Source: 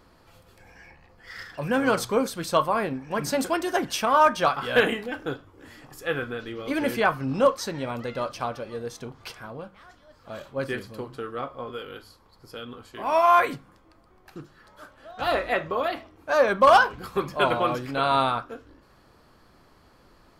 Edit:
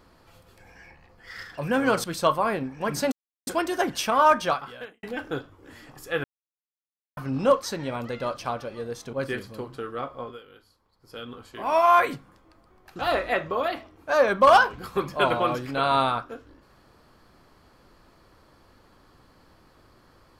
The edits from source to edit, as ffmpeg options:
-filter_complex "[0:a]asplit=10[s0][s1][s2][s3][s4][s5][s6][s7][s8][s9];[s0]atrim=end=2.042[s10];[s1]atrim=start=2.338:end=3.42,asetpts=PTS-STARTPTS,afade=t=out:st=1.078:d=0.004:c=hsin,apad=pad_dur=0.35[s11];[s2]atrim=start=3.42:end=4.98,asetpts=PTS-STARTPTS,afade=t=in:d=0.004:c=hsin,afade=t=out:st=0.95:d=0.61:c=qua[s12];[s3]atrim=start=4.98:end=6.19,asetpts=PTS-STARTPTS,afade=t=in:d=0.004:c=hsin,afade=t=out:st=1.206:d=0.004:c=hsin[s13];[s4]atrim=start=6.19:end=7.12,asetpts=PTS-STARTPTS,volume=0[s14];[s5]atrim=start=7.12:end=9.082,asetpts=PTS-STARTPTS,afade=t=in:d=0.004:c=hsin[s15];[s6]atrim=start=10.528:end=11.81,asetpts=PTS-STARTPTS,afade=t=out:st=1.102:d=0.18:silence=0.266073[s16];[s7]atrim=start=11.81:end=12.41,asetpts=PTS-STARTPTS,volume=0.266[s17];[s8]atrim=start=12.41:end=14.392,asetpts=PTS-STARTPTS,afade=t=in:d=0.18:silence=0.266073[s18];[s9]atrim=start=15.188[s19];[s11][s12][s13][s14][s15]concat=n=5:v=0:a=1[s20];[s10][s20]acrossfade=d=0.004:c1=hsin:c2=hsin[s21];[s16][s17][s18]concat=n=3:v=0:a=1[s22];[s21][s22]acrossfade=d=0.004:c1=hsin:c2=hsin[s23];[s23][s19]acrossfade=d=0.004:c1=hsin:c2=hsin"

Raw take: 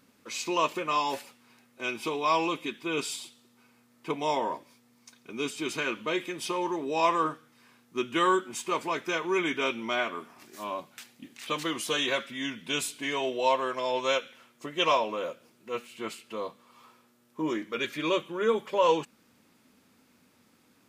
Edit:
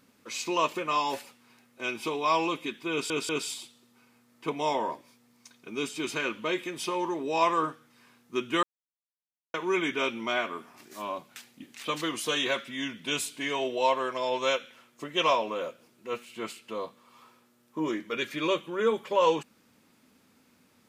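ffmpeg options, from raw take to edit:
-filter_complex "[0:a]asplit=5[s0][s1][s2][s3][s4];[s0]atrim=end=3.102[s5];[s1]atrim=start=2.908:end=3.102[s6];[s2]atrim=start=2.908:end=8.25,asetpts=PTS-STARTPTS,afade=t=out:st=5.338:d=0.004:c=hsin[s7];[s3]atrim=start=8.25:end=9.16,asetpts=PTS-STARTPTS,volume=0[s8];[s4]atrim=start=9.16,asetpts=PTS-STARTPTS,afade=t=in:d=0.004:c=hsin[s9];[s5][s6]acrossfade=d=0.004:c1=hsin:c2=hsin[s10];[s7][s8][s9]concat=n=3:v=0:a=1[s11];[s10][s11]acrossfade=d=0.004:c1=hsin:c2=hsin"

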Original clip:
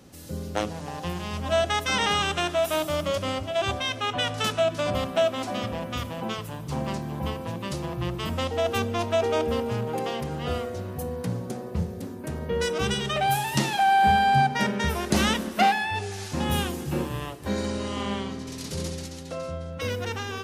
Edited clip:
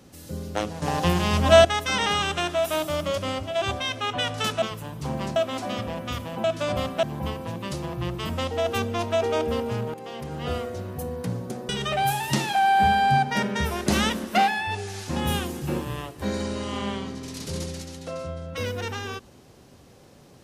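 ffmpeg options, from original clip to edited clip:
-filter_complex "[0:a]asplit=9[s0][s1][s2][s3][s4][s5][s6][s7][s8];[s0]atrim=end=0.822[s9];[s1]atrim=start=0.818:end=1.652,asetpts=PTS-STARTPTS,volume=2.99[s10];[s2]atrim=start=1.648:end=4.622[s11];[s3]atrim=start=6.288:end=7.032[s12];[s4]atrim=start=5.208:end=6.292[s13];[s5]atrim=start=4.618:end=5.212[s14];[s6]atrim=start=7.028:end=9.94,asetpts=PTS-STARTPTS,afade=t=out:st=2.908:d=0.004:c=hsin:silence=0.188365[s15];[s7]atrim=start=9.94:end=11.692,asetpts=PTS-STARTPTS,afade=t=in:d=0.51:silence=0.188365[s16];[s8]atrim=start=12.928[s17];[s9][s10]acrossfade=d=0.004:c1=hsin:c2=hsin[s18];[s18][s11]acrossfade=d=0.004:c1=hsin:c2=hsin[s19];[s19][s12]acrossfade=d=0.004:c1=hsin:c2=hsin[s20];[s20][s13]acrossfade=d=0.004:c1=hsin:c2=hsin[s21];[s21][s14]acrossfade=d=0.004:c1=hsin:c2=hsin[s22];[s15][s16]concat=n=2:v=0:a=1[s23];[s22][s23]acrossfade=d=0.004:c1=hsin:c2=hsin[s24];[s24][s17]acrossfade=d=0.004:c1=hsin:c2=hsin"

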